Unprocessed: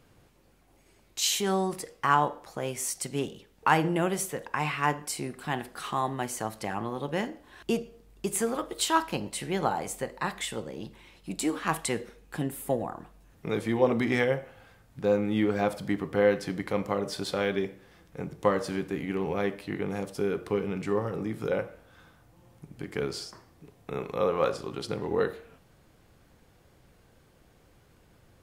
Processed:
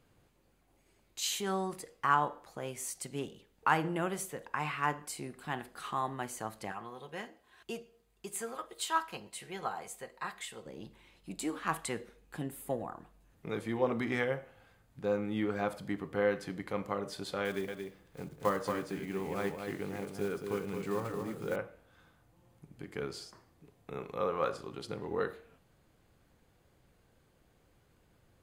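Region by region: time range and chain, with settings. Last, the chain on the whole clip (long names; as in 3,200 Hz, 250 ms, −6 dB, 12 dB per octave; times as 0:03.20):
0:06.72–0:10.66: low-shelf EQ 410 Hz −10 dB + notch comb filter 290 Hz
0:17.45–0:21.56: one scale factor per block 5 bits + single-tap delay 227 ms −5.5 dB
whole clip: notch filter 5,500 Hz, Q 14; dynamic equaliser 1,300 Hz, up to +5 dB, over −41 dBFS, Q 1.7; level −7.5 dB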